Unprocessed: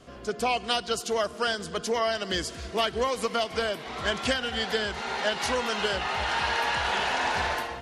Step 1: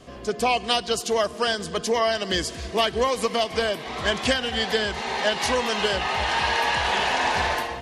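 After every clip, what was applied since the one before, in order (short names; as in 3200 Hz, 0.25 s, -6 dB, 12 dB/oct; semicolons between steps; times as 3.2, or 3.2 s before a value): notch 1400 Hz, Q 8.1; gain +4.5 dB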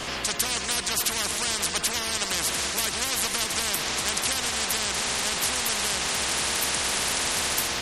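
spectral compressor 10:1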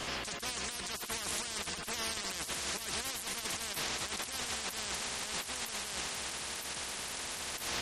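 negative-ratio compressor -29 dBFS, ratio -0.5; gain -9 dB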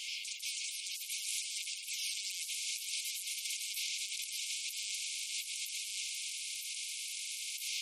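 brick-wall FIR high-pass 2100 Hz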